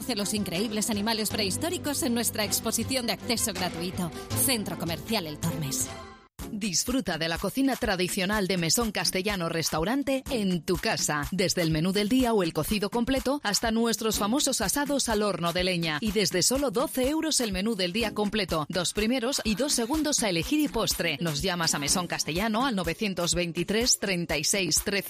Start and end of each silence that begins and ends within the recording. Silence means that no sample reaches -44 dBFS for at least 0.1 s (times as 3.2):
6.26–6.39